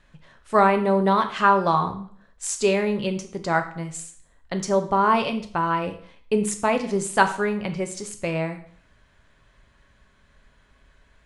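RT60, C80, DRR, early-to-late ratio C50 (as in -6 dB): 0.55 s, 15.0 dB, 6.0 dB, 11.5 dB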